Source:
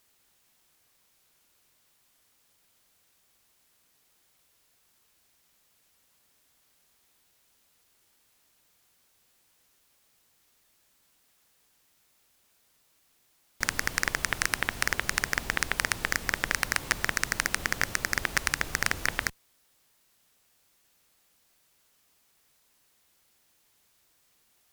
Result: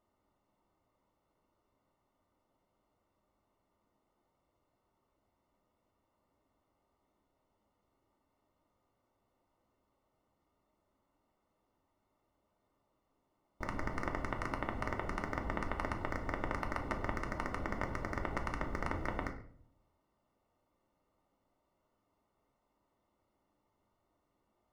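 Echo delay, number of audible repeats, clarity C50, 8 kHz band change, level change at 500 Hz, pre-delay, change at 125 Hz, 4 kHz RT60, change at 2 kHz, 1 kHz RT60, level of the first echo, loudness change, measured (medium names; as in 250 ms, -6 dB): no echo, no echo, 10.5 dB, -28.0 dB, 0.0 dB, 3 ms, -0.5 dB, 0.40 s, -15.5 dB, 0.50 s, no echo, -11.0 dB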